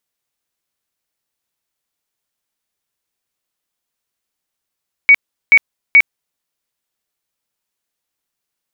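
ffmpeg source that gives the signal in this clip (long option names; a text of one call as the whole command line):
ffmpeg -f lavfi -i "aevalsrc='0.708*sin(2*PI*2250*mod(t,0.43))*lt(mod(t,0.43),125/2250)':duration=1.29:sample_rate=44100" out.wav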